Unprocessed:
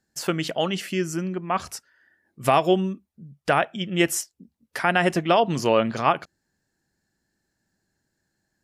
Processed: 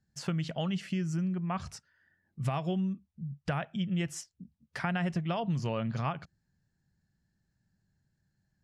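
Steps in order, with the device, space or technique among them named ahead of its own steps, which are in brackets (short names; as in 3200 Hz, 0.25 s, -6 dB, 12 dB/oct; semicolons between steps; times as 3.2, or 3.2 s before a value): jukebox (LPF 6800 Hz 12 dB/oct; resonant low shelf 220 Hz +11.5 dB, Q 1.5; compressor 4:1, threshold -21 dBFS, peak gain reduction 9.5 dB); gain -8 dB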